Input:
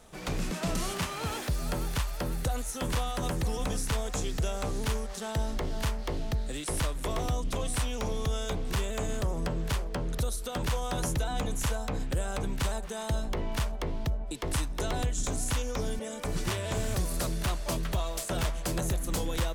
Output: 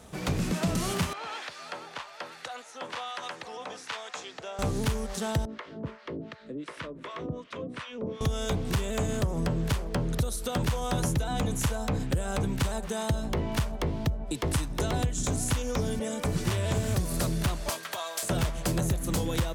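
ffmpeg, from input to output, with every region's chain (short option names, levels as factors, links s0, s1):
-filter_complex "[0:a]asettb=1/sr,asplit=3[s0][s1][s2];[s0]atrim=end=1.134[s3];[s1]atrim=start=1.13:end=4.59,asetpts=PTS-STARTPTS,afade=t=in:d=0.004:c=qsin,afade=t=out:st=3.456:d=0.004:c=qsin,highpass=780,lowpass=4100,acrossover=split=1000[s4][s5];[s4]aeval=exprs='val(0)*(1-0.5/2+0.5/2*cos(2*PI*1.2*n/s))':c=same[s6];[s5]aeval=exprs='val(0)*(1-0.5/2-0.5/2*cos(2*PI*1.2*n/s))':c=same[s7];[s6][s7]amix=inputs=2:normalize=0[s8];[s2]atrim=start=4.586[s9];[s3][s8]acrossfade=d=0.004:c1=hsin:c2=qsin[s10];[s10][s9]acrossfade=d=0.004:c1=qsin:c2=hsin,asettb=1/sr,asplit=3[s11][s12][s13];[s11]atrim=end=5.454[s14];[s12]atrim=start=5.45:end=8.21,asetpts=PTS-STARTPTS,afade=t=in:d=0.004:c=qsin,afade=t=out:st=2.756:d=0.004:c=qsin,equalizer=f=780:w=4.3:g=-14,acrossover=split=730[s15][s16];[s15]aeval=exprs='val(0)*(1-1/2+1/2*cos(2*PI*2.7*n/s))':c=same[s17];[s16]aeval=exprs='val(0)*(1-1/2-1/2*cos(2*PI*2.7*n/s))':c=same[s18];[s17][s18]amix=inputs=2:normalize=0,highpass=240,lowpass=2500[s19];[s13]atrim=start=8.206[s20];[s14][s19]acrossfade=d=0.004:c1=hsin:c2=qsin[s21];[s21][s20]acrossfade=d=0.004:c1=qsin:c2=hsin,asettb=1/sr,asplit=3[s22][s23][s24];[s22]atrim=end=17.694[s25];[s23]atrim=start=17.69:end=18.23,asetpts=PTS-STARTPTS,afade=t=in:d=0.004:c=qsin,afade=t=out:st=0.536:d=0.004:c=qsin,highpass=780,bandreject=f=2800:w=29,aeval=exprs='val(0)+0.00316*sin(2*PI*1600*n/s)':c=same[s26];[s24]atrim=start=18.226[s27];[s25][s26]acrossfade=d=0.004:c1=hsin:c2=qsin[s28];[s28][s27]acrossfade=d=0.004:c1=qsin:c2=hsin,highpass=85,lowshelf=f=190:g=10,acompressor=threshold=0.0398:ratio=3,volume=1.5"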